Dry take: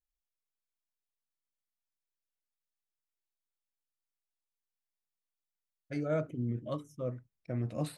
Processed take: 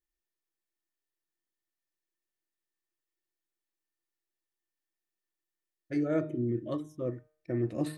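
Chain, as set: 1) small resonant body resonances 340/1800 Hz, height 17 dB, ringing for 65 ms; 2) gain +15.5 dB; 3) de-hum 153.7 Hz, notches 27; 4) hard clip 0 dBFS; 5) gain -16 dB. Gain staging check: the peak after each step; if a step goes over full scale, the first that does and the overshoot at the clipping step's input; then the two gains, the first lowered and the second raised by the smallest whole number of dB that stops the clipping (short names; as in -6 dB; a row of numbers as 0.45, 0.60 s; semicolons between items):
-17.0, -1.5, -2.0, -2.0, -18.0 dBFS; no overload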